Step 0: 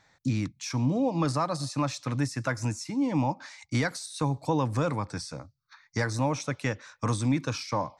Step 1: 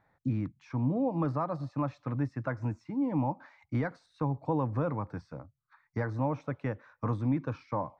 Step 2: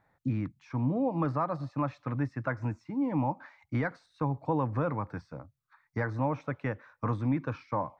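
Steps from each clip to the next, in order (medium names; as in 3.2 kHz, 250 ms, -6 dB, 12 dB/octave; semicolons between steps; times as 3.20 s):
low-pass 1.3 kHz 12 dB/octave; trim -3 dB
dynamic bell 1.9 kHz, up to +5 dB, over -51 dBFS, Q 0.74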